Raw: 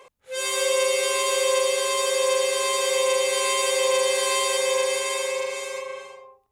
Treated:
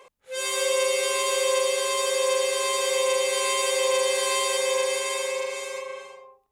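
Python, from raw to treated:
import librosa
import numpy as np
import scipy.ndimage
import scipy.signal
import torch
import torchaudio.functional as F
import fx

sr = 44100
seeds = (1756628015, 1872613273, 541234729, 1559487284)

y = fx.peak_eq(x, sr, hz=97.0, db=-9.0, octaves=0.55)
y = y * librosa.db_to_amplitude(-1.5)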